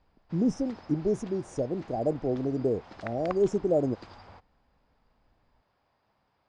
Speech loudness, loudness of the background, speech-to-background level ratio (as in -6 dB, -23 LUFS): -29.5 LUFS, -48.5 LUFS, 19.0 dB